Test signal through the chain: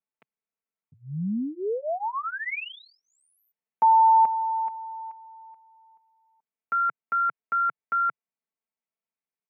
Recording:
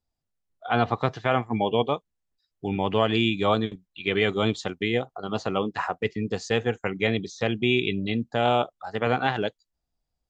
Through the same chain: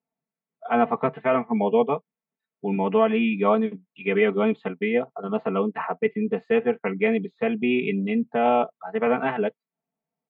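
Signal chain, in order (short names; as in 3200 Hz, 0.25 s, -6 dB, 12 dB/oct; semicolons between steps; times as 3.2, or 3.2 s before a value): elliptic band-pass 140–2300 Hz, stop band 40 dB; bell 1700 Hz -4.5 dB 0.52 oct; comb 4.5 ms, depth 96%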